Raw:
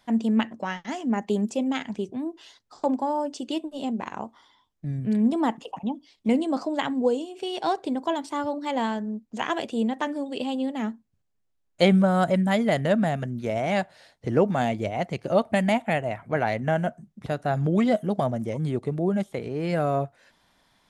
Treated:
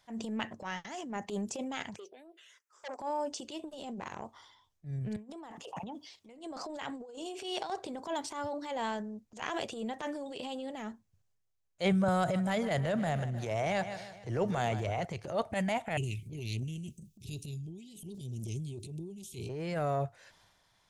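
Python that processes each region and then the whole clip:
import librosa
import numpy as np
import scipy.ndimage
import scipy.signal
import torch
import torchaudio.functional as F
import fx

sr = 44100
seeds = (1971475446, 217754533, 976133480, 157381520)

y = fx.chain(x, sr, fx.highpass(hz=450.0, slope=24),
    fx.env_phaser(low_hz=600.0, high_hz=3100.0, full_db=-29.5),
    fx.transformer_sat(knee_hz=2300.0), at=(1.96, 3.0))
y = fx.chain(y, sr, fx.highpass(hz=180.0, slope=6),
    fx.over_compress(threshold_db=-31.0, ratio=-0.5), at=(5.16, 7.7))
y = fx.chain(y, sr, fx.echo_feedback(ms=153, feedback_pct=47, wet_db=-17.0),
    fx.band_squash(depth_pct=40), at=(12.08, 15.05))
y = fx.chain(y, sr, fx.cheby1_bandstop(low_hz=400.0, high_hz=2500.0, order=5),
    fx.high_shelf(hz=6200.0, db=11.5),
    fx.over_compress(threshold_db=-33.0, ratio=-1.0), at=(15.97, 19.49))
y = fx.graphic_eq_15(y, sr, hz=(100, 250, 6300), db=(6, -10, 5))
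y = fx.transient(y, sr, attack_db=-10, sustain_db=6)
y = y * 10.0 ** (-6.0 / 20.0)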